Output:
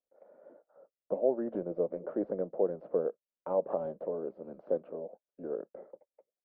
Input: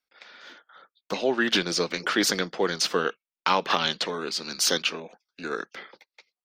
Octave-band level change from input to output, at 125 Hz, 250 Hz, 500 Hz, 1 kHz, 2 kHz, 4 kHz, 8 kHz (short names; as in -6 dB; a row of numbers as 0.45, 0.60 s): -9.5 dB, -8.0 dB, -2.0 dB, -15.5 dB, under -30 dB, under -40 dB, under -40 dB